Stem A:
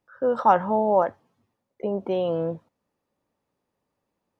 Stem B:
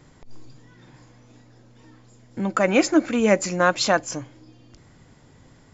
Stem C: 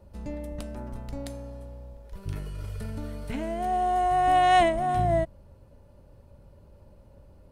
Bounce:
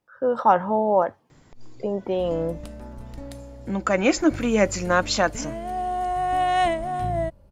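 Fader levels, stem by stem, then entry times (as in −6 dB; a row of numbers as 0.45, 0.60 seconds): +0.5, −1.5, −1.5 decibels; 0.00, 1.30, 2.05 seconds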